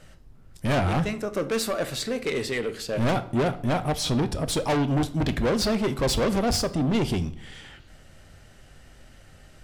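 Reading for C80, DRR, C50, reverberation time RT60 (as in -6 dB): 20.0 dB, 11.0 dB, 16.0 dB, 0.55 s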